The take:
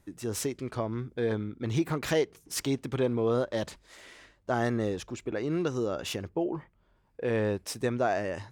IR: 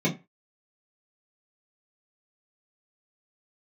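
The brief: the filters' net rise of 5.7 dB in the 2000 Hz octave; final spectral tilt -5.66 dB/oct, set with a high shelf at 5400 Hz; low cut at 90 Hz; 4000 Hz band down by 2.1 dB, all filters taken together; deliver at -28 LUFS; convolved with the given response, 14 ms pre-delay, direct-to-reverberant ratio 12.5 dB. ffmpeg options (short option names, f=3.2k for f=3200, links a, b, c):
-filter_complex "[0:a]highpass=90,equalizer=f=2k:t=o:g=8.5,equalizer=f=4k:t=o:g=-4.5,highshelf=f=5.4k:g=-4,asplit=2[a][b];[1:a]atrim=start_sample=2205,adelay=14[c];[b][c]afir=irnorm=-1:irlink=0,volume=-24dB[d];[a][d]amix=inputs=2:normalize=0,volume=1dB"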